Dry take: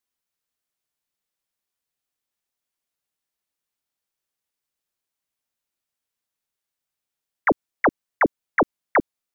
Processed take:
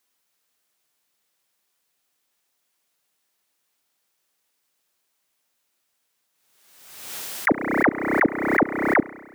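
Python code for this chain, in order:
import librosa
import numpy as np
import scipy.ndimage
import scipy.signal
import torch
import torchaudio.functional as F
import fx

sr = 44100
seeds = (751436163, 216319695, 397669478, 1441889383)

y = fx.highpass(x, sr, hz=220.0, slope=6)
y = fx.over_compress(y, sr, threshold_db=-21.0, ratio=-0.5)
y = fx.rev_spring(y, sr, rt60_s=1.5, pass_ms=(31,), chirp_ms=65, drr_db=16.0)
y = fx.pre_swell(y, sr, db_per_s=49.0)
y = y * librosa.db_to_amplitude(6.0)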